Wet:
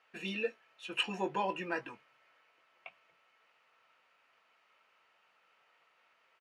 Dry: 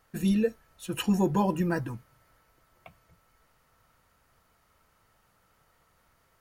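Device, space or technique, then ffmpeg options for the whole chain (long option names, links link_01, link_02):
intercom: -filter_complex "[0:a]highpass=480,lowpass=4100,equalizer=frequency=2600:width_type=o:width=0.59:gain=11.5,asoftclip=type=tanh:threshold=-16.5dB,asplit=2[link_01][link_02];[link_02]adelay=21,volume=-11dB[link_03];[link_01][link_03]amix=inputs=2:normalize=0,volume=-3.5dB"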